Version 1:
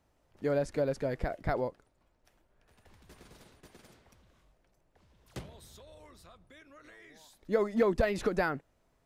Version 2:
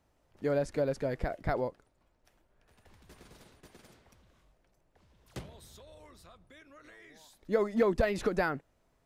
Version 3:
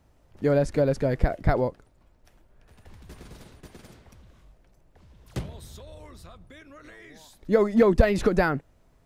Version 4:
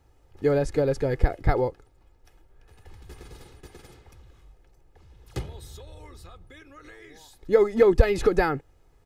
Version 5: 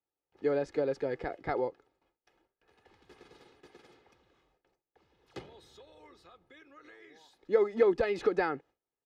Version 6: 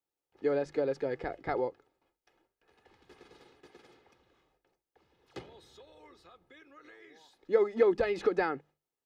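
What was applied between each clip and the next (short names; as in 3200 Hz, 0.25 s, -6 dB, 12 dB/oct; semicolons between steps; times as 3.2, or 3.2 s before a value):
nothing audible
low shelf 220 Hz +8 dB; gain +6 dB
comb 2.4 ms, depth 57%; gain -1 dB
HPF 44 Hz 6 dB/oct; three-band isolator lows -20 dB, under 190 Hz, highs -17 dB, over 5500 Hz; gate with hold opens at -56 dBFS; gain -6.5 dB
notches 50/100/150/200 Hz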